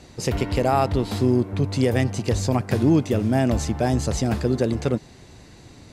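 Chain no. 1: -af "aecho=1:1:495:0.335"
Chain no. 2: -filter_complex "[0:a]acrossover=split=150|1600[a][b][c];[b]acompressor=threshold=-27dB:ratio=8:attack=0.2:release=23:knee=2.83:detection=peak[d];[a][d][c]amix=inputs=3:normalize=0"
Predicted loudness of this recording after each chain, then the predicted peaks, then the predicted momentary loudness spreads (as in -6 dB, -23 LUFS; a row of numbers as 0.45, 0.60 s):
-22.0, -27.0 LUFS; -6.5, -14.0 dBFS; 8, 8 LU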